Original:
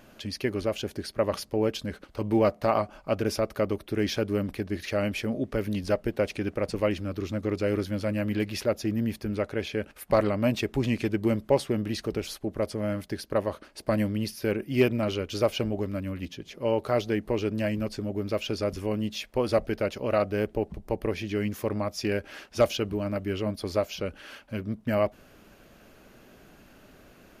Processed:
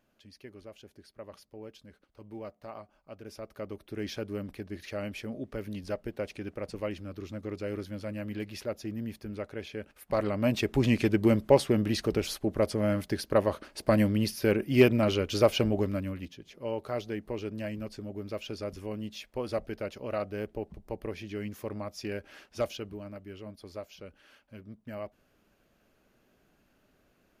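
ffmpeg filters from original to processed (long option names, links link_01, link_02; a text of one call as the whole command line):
ffmpeg -i in.wav -af "volume=2dB,afade=type=in:start_time=3.2:duration=0.88:silence=0.281838,afade=type=in:start_time=10.06:duration=0.83:silence=0.298538,afade=type=out:start_time=15.81:duration=0.52:silence=0.316228,afade=type=out:start_time=22.51:duration=0.71:silence=0.473151" out.wav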